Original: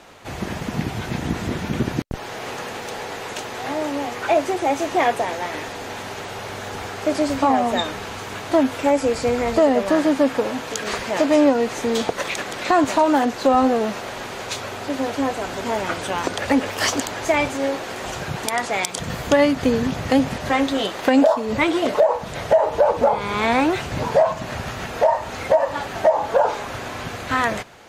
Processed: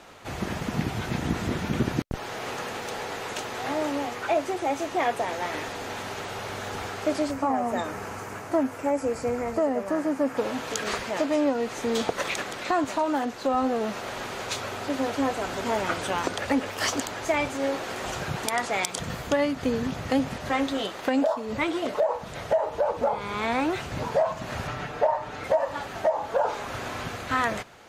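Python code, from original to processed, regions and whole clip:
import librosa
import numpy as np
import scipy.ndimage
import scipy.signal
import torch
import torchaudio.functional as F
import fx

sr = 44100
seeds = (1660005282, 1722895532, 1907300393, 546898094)

y = fx.chain(x, sr, fx.highpass(hz=58.0, slope=12),
    fx.peak_eq(hz=3600.0, db=-13.0, octaves=0.82), at=(7.31, 10.37))
y = fx.chain(y, sr, fx.lowpass(hz=2900.0, slope=6),
    fx.comb(ms=6.8, depth=0.73), at=(24.67, 25.44))
y = fx.peak_eq(y, sr, hz=1300.0, db=2.5, octaves=0.24)
y = fx.rider(y, sr, range_db=3, speed_s=0.5)
y = y * librosa.db_to_amplitude(-6.0)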